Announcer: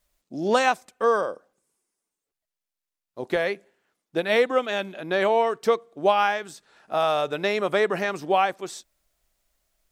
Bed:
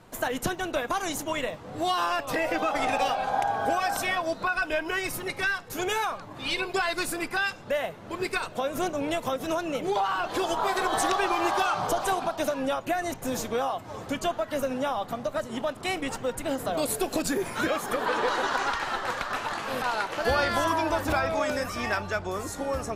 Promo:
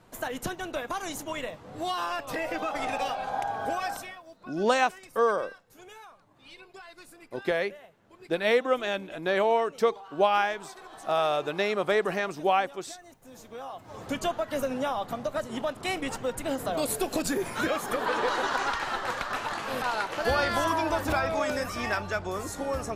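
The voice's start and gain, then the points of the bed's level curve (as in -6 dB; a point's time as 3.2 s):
4.15 s, -3.0 dB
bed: 3.9 s -4.5 dB
4.21 s -20.5 dB
13.25 s -20.5 dB
14.11 s -1 dB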